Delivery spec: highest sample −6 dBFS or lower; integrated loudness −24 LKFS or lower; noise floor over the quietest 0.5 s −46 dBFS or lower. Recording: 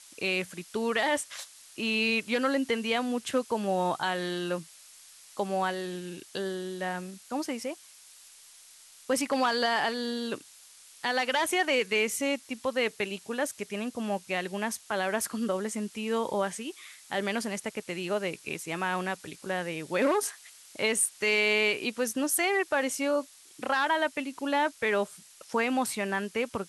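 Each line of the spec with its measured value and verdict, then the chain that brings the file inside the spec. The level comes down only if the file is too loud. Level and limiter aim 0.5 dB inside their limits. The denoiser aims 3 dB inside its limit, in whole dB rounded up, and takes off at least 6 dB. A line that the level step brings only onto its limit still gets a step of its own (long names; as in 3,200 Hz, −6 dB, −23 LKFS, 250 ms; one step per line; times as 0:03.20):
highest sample −10.5 dBFS: in spec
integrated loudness −29.5 LKFS: in spec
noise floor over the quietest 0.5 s −54 dBFS: in spec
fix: no processing needed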